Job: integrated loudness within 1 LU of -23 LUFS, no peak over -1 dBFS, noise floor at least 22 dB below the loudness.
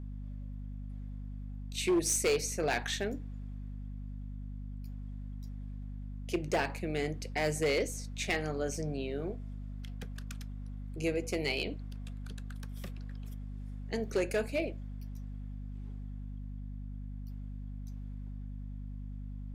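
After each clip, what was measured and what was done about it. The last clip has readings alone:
clipped samples 0.5%; clipping level -23.5 dBFS; hum 50 Hz; highest harmonic 250 Hz; hum level -39 dBFS; loudness -37.0 LUFS; peak level -23.5 dBFS; loudness target -23.0 LUFS
-> clip repair -23.5 dBFS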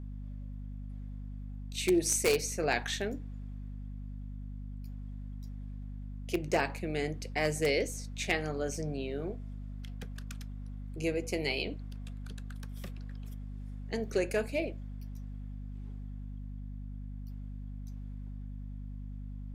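clipped samples 0.0%; hum 50 Hz; highest harmonic 250 Hz; hum level -39 dBFS
-> hum notches 50/100/150/200/250 Hz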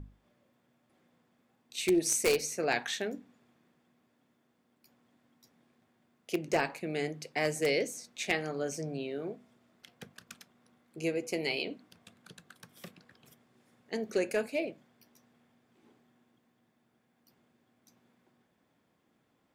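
hum not found; loudness -33.0 LUFS; peak level -14.0 dBFS; loudness target -23.0 LUFS
-> trim +10 dB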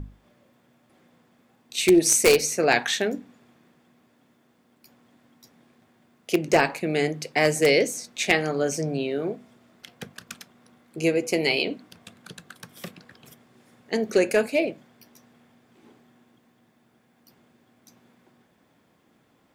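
loudness -23.0 LUFS; peak level -4.0 dBFS; noise floor -64 dBFS

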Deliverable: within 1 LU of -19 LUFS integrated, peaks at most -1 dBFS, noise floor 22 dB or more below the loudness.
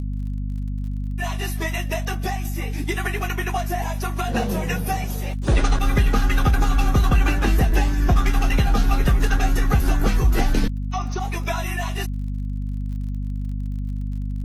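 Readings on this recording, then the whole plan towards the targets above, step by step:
tick rate 45 per s; hum 50 Hz; highest harmonic 250 Hz; hum level -24 dBFS; loudness -23.5 LUFS; peak level -7.0 dBFS; loudness target -19.0 LUFS
-> de-click; hum notches 50/100/150/200/250 Hz; trim +4.5 dB

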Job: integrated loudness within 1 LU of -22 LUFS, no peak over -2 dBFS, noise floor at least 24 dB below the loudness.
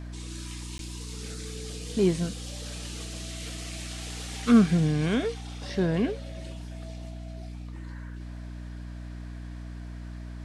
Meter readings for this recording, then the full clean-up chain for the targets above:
dropouts 1; longest dropout 12 ms; hum 60 Hz; highest harmonic 300 Hz; hum level -37 dBFS; loudness -29.5 LUFS; peak level -8.5 dBFS; loudness target -22.0 LUFS
-> interpolate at 0.78 s, 12 ms; de-hum 60 Hz, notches 5; trim +7.5 dB; peak limiter -2 dBFS

